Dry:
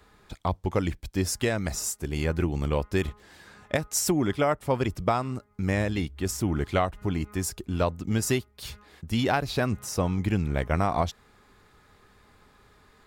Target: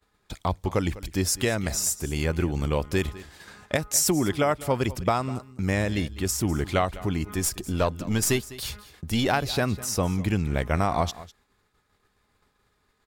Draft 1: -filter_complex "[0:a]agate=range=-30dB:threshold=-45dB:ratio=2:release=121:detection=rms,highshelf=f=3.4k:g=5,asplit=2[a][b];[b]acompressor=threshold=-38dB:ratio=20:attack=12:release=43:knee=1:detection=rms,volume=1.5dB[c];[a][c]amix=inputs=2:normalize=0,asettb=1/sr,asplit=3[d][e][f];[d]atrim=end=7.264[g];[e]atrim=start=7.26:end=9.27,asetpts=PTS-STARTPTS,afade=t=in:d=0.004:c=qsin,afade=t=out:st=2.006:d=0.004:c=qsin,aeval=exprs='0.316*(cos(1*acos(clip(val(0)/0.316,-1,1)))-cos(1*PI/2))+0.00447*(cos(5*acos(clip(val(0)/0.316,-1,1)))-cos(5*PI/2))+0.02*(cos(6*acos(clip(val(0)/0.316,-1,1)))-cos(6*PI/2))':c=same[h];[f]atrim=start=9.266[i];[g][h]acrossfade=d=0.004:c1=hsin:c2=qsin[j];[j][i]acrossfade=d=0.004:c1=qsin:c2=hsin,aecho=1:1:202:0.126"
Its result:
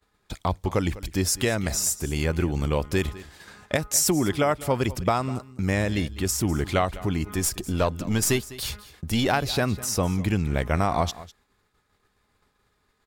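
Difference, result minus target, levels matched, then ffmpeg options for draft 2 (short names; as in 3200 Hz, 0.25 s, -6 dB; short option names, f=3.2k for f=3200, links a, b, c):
compressor: peak gain reduction -7 dB
-filter_complex "[0:a]agate=range=-30dB:threshold=-45dB:ratio=2:release=121:detection=rms,highshelf=f=3.4k:g=5,asplit=2[a][b];[b]acompressor=threshold=-45.5dB:ratio=20:attack=12:release=43:knee=1:detection=rms,volume=1.5dB[c];[a][c]amix=inputs=2:normalize=0,asettb=1/sr,asplit=3[d][e][f];[d]atrim=end=7.264[g];[e]atrim=start=7.26:end=9.27,asetpts=PTS-STARTPTS,afade=t=in:d=0.004:c=qsin,afade=t=out:st=2.006:d=0.004:c=qsin,aeval=exprs='0.316*(cos(1*acos(clip(val(0)/0.316,-1,1)))-cos(1*PI/2))+0.00447*(cos(5*acos(clip(val(0)/0.316,-1,1)))-cos(5*PI/2))+0.02*(cos(6*acos(clip(val(0)/0.316,-1,1)))-cos(6*PI/2))':c=same[h];[f]atrim=start=9.266[i];[g][h]acrossfade=d=0.004:c1=hsin:c2=qsin[j];[j][i]acrossfade=d=0.004:c1=qsin:c2=hsin,aecho=1:1:202:0.126"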